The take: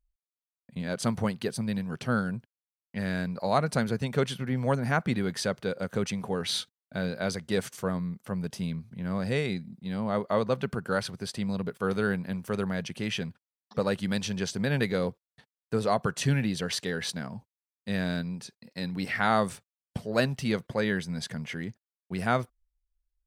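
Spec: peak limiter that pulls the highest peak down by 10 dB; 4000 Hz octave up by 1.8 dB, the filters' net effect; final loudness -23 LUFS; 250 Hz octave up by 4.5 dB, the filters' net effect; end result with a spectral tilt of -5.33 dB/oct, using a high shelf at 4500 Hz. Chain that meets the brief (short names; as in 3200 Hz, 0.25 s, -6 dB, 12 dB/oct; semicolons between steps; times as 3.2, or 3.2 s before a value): bell 250 Hz +6 dB; bell 4000 Hz +3.5 dB; high shelf 4500 Hz -3 dB; gain +8 dB; limiter -11 dBFS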